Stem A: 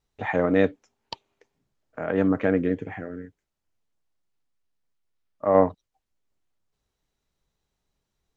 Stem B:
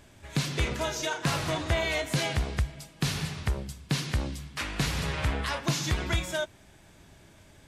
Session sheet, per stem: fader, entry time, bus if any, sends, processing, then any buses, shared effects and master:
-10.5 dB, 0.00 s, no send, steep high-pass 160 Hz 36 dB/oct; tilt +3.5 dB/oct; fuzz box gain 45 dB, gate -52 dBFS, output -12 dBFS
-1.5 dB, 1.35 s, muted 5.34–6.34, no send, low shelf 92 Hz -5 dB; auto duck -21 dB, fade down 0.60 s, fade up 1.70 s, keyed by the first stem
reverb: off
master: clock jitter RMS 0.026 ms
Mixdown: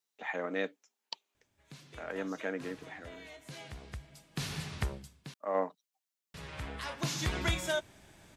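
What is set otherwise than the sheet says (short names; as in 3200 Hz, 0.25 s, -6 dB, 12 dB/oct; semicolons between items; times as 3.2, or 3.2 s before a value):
stem A: missing fuzz box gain 45 dB, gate -52 dBFS, output -12 dBFS; master: missing clock jitter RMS 0.026 ms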